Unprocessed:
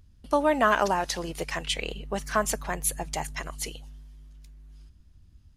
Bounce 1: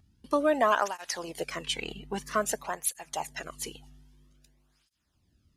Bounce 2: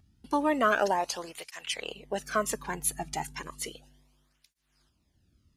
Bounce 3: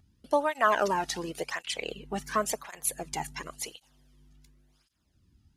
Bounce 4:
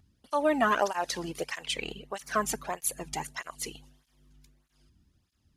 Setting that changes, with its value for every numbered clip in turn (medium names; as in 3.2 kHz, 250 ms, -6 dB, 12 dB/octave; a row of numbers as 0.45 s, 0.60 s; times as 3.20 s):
cancelling through-zero flanger, nulls at: 0.51 Hz, 0.33 Hz, 0.92 Hz, 1.6 Hz